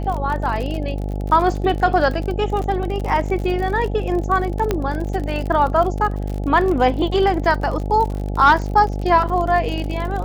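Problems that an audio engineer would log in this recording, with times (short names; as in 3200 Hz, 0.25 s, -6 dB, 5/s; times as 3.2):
buzz 50 Hz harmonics 17 -24 dBFS
crackle 50/s -25 dBFS
4.71 pop -6 dBFS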